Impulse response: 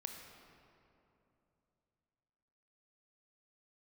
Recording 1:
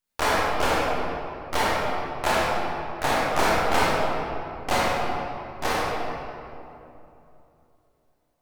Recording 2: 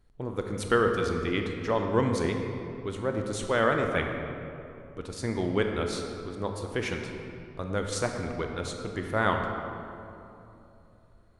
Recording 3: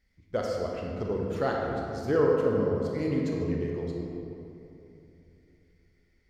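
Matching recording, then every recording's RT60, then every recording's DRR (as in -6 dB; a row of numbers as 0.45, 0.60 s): 2; 2.9, 2.9, 2.9 s; -7.5, 3.0, -2.0 dB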